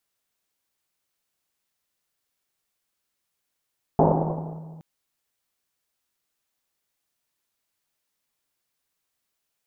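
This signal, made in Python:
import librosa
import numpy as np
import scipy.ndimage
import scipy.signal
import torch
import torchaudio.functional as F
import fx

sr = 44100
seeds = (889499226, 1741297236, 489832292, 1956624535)

y = fx.risset_drum(sr, seeds[0], length_s=0.82, hz=160.0, decay_s=2.47, noise_hz=550.0, noise_width_hz=710.0, noise_pct=55)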